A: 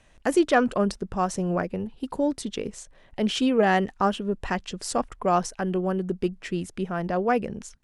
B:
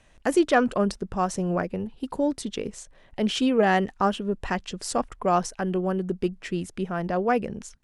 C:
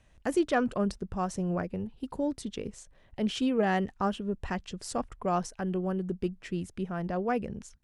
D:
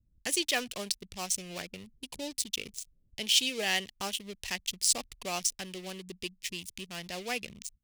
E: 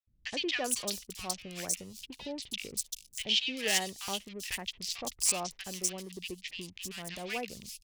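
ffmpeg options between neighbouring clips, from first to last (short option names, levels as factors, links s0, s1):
-af anull
-af "equalizer=f=73:w=0.47:g=8,volume=0.422"
-filter_complex "[0:a]acrossover=split=320[s0][s1];[s0]acompressor=threshold=0.01:ratio=6[s2];[s1]aeval=exprs='sgn(val(0))*max(abs(val(0))-0.00422,0)':c=same[s3];[s2][s3]amix=inputs=2:normalize=0,aexciter=amount=14.5:drive=3.1:freq=2100,volume=0.447"
-filter_complex "[0:a]acrossover=split=1400|4700[s0][s1][s2];[s0]adelay=70[s3];[s2]adelay=390[s4];[s3][s1][s4]amix=inputs=3:normalize=0"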